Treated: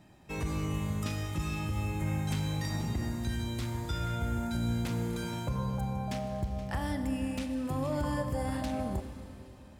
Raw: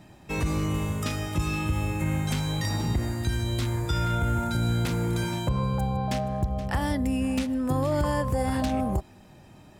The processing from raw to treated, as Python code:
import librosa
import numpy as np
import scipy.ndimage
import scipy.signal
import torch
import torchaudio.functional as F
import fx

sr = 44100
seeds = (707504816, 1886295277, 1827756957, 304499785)

y = fx.rev_schroeder(x, sr, rt60_s=3.2, comb_ms=30, drr_db=6.5)
y = y * 10.0 ** (-7.5 / 20.0)